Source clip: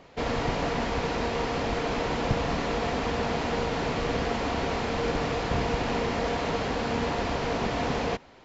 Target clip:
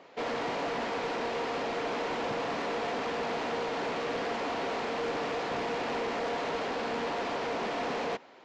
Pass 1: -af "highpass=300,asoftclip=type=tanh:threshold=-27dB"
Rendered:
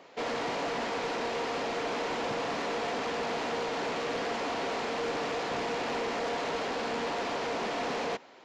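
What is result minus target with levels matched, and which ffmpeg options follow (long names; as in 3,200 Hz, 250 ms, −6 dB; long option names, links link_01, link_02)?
8,000 Hz band +4.0 dB
-af "highpass=300,highshelf=frequency=6500:gain=-10,asoftclip=type=tanh:threshold=-27dB"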